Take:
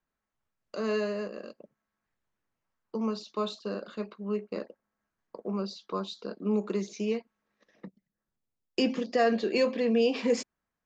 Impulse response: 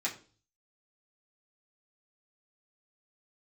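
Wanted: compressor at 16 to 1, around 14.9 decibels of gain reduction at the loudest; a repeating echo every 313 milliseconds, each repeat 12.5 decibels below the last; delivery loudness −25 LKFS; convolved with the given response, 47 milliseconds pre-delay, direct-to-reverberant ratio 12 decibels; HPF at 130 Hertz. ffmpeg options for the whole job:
-filter_complex "[0:a]highpass=130,acompressor=threshold=-35dB:ratio=16,aecho=1:1:313|626|939:0.237|0.0569|0.0137,asplit=2[link_01][link_02];[1:a]atrim=start_sample=2205,adelay=47[link_03];[link_02][link_03]afir=irnorm=-1:irlink=0,volume=-17dB[link_04];[link_01][link_04]amix=inputs=2:normalize=0,volume=16dB"

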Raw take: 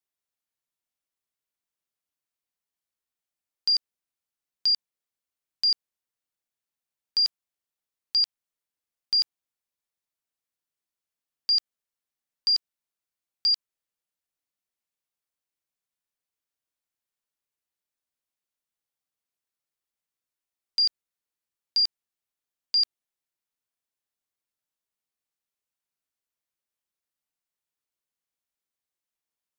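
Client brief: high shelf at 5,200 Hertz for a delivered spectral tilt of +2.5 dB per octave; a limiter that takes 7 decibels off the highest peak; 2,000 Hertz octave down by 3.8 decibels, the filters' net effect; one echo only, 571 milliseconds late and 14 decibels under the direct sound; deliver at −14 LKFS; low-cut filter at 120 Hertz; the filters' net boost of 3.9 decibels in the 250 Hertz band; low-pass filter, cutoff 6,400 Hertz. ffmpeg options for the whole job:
ffmpeg -i in.wav -af "highpass=120,lowpass=6400,equalizer=frequency=250:width_type=o:gain=5.5,equalizer=frequency=2000:width_type=o:gain=-6.5,highshelf=frequency=5200:gain=8,alimiter=limit=-22.5dB:level=0:latency=1,aecho=1:1:571:0.2,volume=15.5dB" out.wav

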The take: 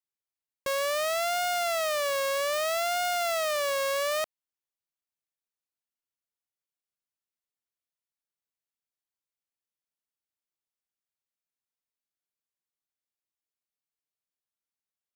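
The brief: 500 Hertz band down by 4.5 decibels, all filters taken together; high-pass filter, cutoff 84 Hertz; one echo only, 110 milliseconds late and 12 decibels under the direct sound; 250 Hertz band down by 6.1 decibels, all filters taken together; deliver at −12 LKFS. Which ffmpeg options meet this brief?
ffmpeg -i in.wav -af "highpass=84,equalizer=frequency=250:width_type=o:gain=-6.5,equalizer=frequency=500:width_type=o:gain=-5,aecho=1:1:110:0.251,volume=17dB" out.wav

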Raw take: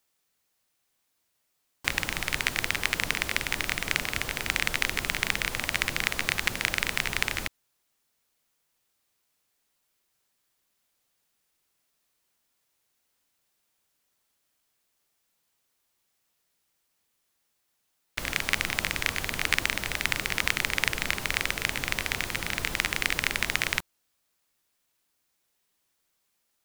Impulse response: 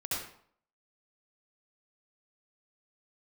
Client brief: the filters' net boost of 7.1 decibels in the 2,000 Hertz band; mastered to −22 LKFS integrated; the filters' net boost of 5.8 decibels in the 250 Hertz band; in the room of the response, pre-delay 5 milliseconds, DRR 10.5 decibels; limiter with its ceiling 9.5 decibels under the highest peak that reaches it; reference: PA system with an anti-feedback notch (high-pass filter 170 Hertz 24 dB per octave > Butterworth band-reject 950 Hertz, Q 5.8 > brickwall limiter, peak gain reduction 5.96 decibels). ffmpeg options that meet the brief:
-filter_complex "[0:a]equalizer=frequency=250:width_type=o:gain=8,equalizer=frequency=2000:width_type=o:gain=8,alimiter=limit=-8.5dB:level=0:latency=1,asplit=2[link_01][link_02];[1:a]atrim=start_sample=2205,adelay=5[link_03];[link_02][link_03]afir=irnorm=-1:irlink=0,volume=-15dB[link_04];[link_01][link_04]amix=inputs=2:normalize=0,highpass=frequency=170:width=0.5412,highpass=frequency=170:width=1.3066,asuperstop=centerf=950:order=8:qfactor=5.8,volume=9dB,alimiter=limit=-5.5dB:level=0:latency=1"

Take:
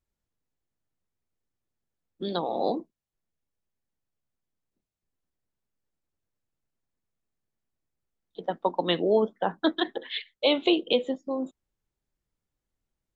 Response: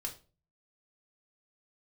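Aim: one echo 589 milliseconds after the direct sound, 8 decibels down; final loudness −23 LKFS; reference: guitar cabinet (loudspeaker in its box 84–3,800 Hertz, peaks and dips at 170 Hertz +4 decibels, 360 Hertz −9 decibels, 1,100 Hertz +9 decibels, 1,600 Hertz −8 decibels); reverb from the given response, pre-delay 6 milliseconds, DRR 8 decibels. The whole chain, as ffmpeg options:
-filter_complex "[0:a]aecho=1:1:589:0.398,asplit=2[link_01][link_02];[1:a]atrim=start_sample=2205,adelay=6[link_03];[link_02][link_03]afir=irnorm=-1:irlink=0,volume=-7dB[link_04];[link_01][link_04]amix=inputs=2:normalize=0,highpass=84,equalizer=frequency=170:width_type=q:width=4:gain=4,equalizer=frequency=360:width_type=q:width=4:gain=-9,equalizer=frequency=1100:width_type=q:width=4:gain=9,equalizer=frequency=1600:width_type=q:width=4:gain=-8,lowpass=frequency=3800:width=0.5412,lowpass=frequency=3800:width=1.3066,volume=5.5dB"

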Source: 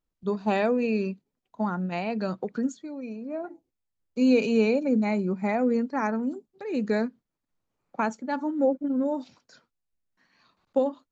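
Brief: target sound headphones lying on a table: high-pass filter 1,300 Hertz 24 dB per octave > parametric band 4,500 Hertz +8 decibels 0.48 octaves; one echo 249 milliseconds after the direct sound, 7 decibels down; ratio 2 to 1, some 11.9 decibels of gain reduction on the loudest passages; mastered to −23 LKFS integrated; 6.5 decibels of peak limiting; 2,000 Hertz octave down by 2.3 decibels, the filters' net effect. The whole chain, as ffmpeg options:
ffmpeg -i in.wav -af "equalizer=frequency=2000:width_type=o:gain=-3,acompressor=threshold=-40dB:ratio=2,alimiter=level_in=6dB:limit=-24dB:level=0:latency=1,volume=-6dB,highpass=frequency=1300:width=0.5412,highpass=frequency=1300:width=1.3066,equalizer=frequency=4500:width_type=o:width=0.48:gain=8,aecho=1:1:249:0.447,volume=29dB" out.wav

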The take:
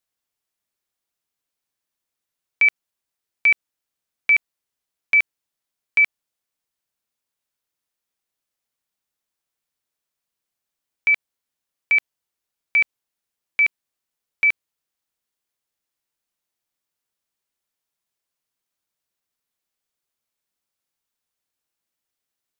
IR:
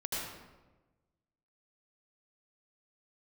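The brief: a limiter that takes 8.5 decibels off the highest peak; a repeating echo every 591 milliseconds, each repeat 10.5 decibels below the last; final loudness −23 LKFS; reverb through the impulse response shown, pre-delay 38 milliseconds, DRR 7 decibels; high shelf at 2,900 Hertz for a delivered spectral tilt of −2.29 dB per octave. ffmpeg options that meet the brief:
-filter_complex "[0:a]highshelf=frequency=2900:gain=-8.5,alimiter=limit=-21.5dB:level=0:latency=1,aecho=1:1:591|1182|1773:0.299|0.0896|0.0269,asplit=2[link_01][link_02];[1:a]atrim=start_sample=2205,adelay=38[link_03];[link_02][link_03]afir=irnorm=-1:irlink=0,volume=-11dB[link_04];[link_01][link_04]amix=inputs=2:normalize=0,volume=8.5dB"

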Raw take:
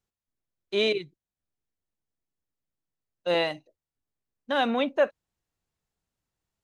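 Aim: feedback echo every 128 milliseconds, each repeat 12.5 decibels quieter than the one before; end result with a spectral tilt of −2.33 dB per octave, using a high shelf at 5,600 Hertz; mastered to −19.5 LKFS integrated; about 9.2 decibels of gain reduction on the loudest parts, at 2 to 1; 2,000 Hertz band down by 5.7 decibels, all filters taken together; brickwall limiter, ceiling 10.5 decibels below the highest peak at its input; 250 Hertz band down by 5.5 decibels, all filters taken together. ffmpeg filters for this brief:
ffmpeg -i in.wav -af "equalizer=frequency=250:width_type=o:gain=-6.5,equalizer=frequency=2000:width_type=o:gain=-6.5,highshelf=frequency=5600:gain=-7,acompressor=threshold=-36dB:ratio=2,alimiter=level_in=9.5dB:limit=-24dB:level=0:latency=1,volume=-9.5dB,aecho=1:1:128|256|384:0.237|0.0569|0.0137,volume=24dB" out.wav

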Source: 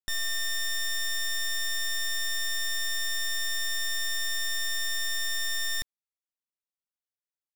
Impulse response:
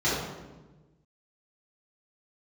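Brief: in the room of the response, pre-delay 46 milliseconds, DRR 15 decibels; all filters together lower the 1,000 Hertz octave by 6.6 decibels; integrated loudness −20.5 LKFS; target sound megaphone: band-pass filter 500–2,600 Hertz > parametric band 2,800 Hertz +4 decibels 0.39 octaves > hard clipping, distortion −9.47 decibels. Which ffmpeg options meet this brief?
-filter_complex "[0:a]equalizer=frequency=1000:width_type=o:gain=-8,asplit=2[link_01][link_02];[1:a]atrim=start_sample=2205,adelay=46[link_03];[link_02][link_03]afir=irnorm=-1:irlink=0,volume=-29dB[link_04];[link_01][link_04]amix=inputs=2:normalize=0,highpass=500,lowpass=2600,equalizer=frequency=2800:width_type=o:width=0.39:gain=4,asoftclip=type=hard:threshold=-39.5dB,volume=19.5dB"

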